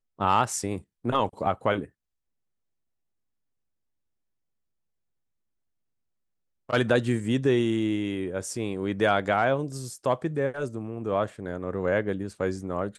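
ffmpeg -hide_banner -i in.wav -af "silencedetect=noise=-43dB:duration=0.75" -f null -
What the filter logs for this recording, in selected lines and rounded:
silence_start: 1.86
silence_end: 6.69 | silence_duration: 4.83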